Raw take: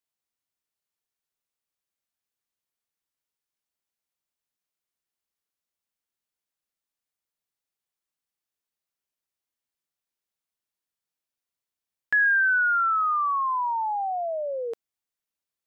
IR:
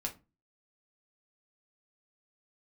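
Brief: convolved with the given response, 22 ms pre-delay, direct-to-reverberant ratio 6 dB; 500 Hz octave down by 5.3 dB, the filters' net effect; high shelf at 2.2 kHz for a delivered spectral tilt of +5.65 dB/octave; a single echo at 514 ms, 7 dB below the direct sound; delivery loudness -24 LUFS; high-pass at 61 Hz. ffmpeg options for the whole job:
-filter_complex "[0:a]highpass=61,equalizer=f=500:t=o:g=-7.5,highshelf=f=2200:g=6.5,aecho=1:1:514:0.447,asplit=2[s0][s1];[1:a]atrim=start_sample=2205,adelay=22[s2];[s1][s2]afir=irnorm=-1:irlink=0,volume=0.447[s3];[s0][s3]amix=inputs=2:normalize=0,volume=0.631"

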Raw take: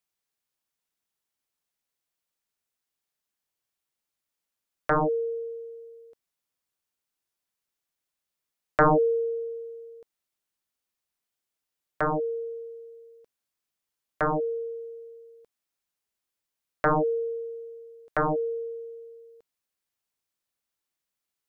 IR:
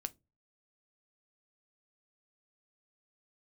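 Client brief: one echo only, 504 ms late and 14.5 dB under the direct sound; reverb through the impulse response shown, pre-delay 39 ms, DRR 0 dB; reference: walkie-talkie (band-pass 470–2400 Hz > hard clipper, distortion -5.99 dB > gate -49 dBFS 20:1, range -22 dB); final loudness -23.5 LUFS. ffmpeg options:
-filter_complex "[0:a]aecho=1:1:504:0.188,asplit=2[s0][s1];[1:a]atrim=start_sample=2205,adelay=39[s2];[s1][s2]afir=irnorm=-1:irlink=0,volume=1.26[s3];[s0][s3]amix=inputs=2:normalize=0,highpass=470,lowpass=2400,asoftclip=type=hard:threshold=0.0447,agate=range=0.0794:threshold=0.00355:ratio=20,volume=2.66"

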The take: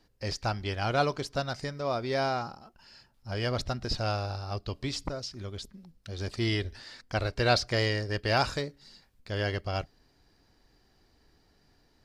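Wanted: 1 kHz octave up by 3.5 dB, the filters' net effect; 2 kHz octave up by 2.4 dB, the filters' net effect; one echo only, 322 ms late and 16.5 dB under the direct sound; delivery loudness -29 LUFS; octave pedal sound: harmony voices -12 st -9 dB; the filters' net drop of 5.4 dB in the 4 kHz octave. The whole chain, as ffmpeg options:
-filter_complex "[0:a]equalizer=f=1000:t=o:g=5,equalizer=f=2000:t=o:g=3,equalizer=f=4000:t=o:g=-8.5,aecho=1:1:322:0.15,asplit=2[s0][s1];[s1]asetrate=22050,aresample=44100,atempo=2,volume=0.355[s2];[s0][s2]amix=inputs=2:normalize=0,volume=1.12"

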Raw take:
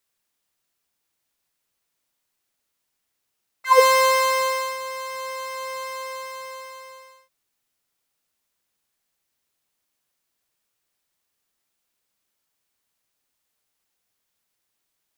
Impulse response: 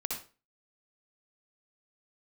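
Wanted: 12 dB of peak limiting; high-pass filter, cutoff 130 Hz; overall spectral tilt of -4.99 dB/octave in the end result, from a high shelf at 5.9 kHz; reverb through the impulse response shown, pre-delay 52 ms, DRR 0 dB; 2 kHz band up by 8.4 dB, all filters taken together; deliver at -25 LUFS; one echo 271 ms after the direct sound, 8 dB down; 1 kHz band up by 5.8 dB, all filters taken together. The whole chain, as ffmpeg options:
-filter_complex "[0:a]highpass=130,equalizer=f=1000:t=o:g=4,equalizer=f=2000:t=o:g=7.5,highshelf=f=5900:g=9,alimiter=limit=0.299:level=0:latency=1,aecho=1:1:271:0.398,asplit=2[s0][s1];[1:a]atrim=start_sample=2205,adelay=52[s2];[s1][s2]afir=irnorm=-1:irlink=0,volume=0.708[s3];[s0][s3]amix=inputs=2:normalize=0,volume=0.473"

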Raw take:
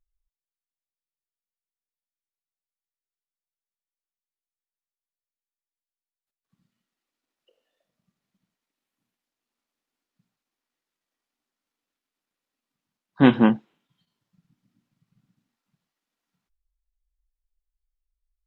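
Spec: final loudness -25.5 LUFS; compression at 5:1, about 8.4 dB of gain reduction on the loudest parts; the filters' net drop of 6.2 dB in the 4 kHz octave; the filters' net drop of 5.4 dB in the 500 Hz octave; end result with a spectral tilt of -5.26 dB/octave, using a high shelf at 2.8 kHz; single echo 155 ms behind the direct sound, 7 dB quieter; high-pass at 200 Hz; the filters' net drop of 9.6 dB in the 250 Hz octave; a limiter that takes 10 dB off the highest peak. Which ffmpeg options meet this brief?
-af "highpass=200,equalizer=f=250:t=o:g=-8,equalizer=f=500:t=o:g=-3.5,highshelf=f=2800:g=-3,equalizer=f=4000:t=o:g=-6.5,acompressor=threshold=0.0501:ratio=5,alimiter=level_in=1.06:limit=0.0631:level=0:latency=1,volume=0.944,aecho=1:1:155:0.447,volume=5.31"

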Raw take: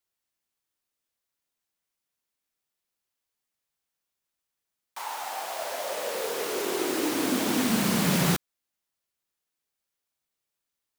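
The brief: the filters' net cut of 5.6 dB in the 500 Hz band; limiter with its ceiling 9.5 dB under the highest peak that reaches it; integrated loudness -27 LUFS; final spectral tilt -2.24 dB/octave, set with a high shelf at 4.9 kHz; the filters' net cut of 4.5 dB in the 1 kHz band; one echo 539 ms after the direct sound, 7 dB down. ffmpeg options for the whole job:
-af "equalizer=f=500:t=o:g=-6.5,equalizer=f=1000:t=o:g=-4,highshelf=f=4900:g=7.5,alimiter=limit=0.119:level=0:latency=1,aecho=1:1:539:0.447,volume=1.12"

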